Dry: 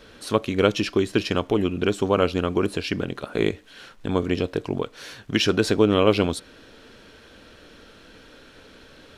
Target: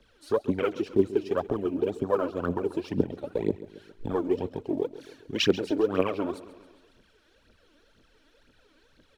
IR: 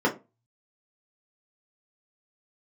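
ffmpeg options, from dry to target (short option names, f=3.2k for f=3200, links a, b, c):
-filter_complex "[0:a]afwtdn=0.0501,acrossover=split=180|830|2100[a][b][c][d];[a]acompressor=threshold=-40dB:ratio=6[e];[e][b][c][d]amix=inputs=4:normalize=0,alimiter=limit=-16dB:level=0:latency=1:release=382,aphaser=in_gain=1:out_gain=1:delay=3.6:decay=0.73:speed=2:type=triangular,aecho=1:1:136|272|408|544|680:0.158|0.0856|0.0462|0.025|0.0135,volume=-1.5dB"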